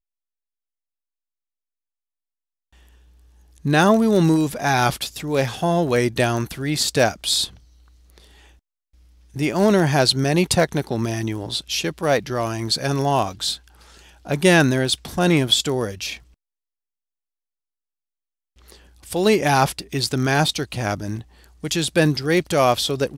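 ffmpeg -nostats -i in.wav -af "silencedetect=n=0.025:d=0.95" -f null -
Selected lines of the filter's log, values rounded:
silence_start: 0.00
silence_end: 3.58 | silence_duration: 3.58
silence_start: 8.18
silence_end: 9.36 | silence_duration: 1.18
silence_start: 16.17
silence_end: 18.69 | silence_duration: 2.52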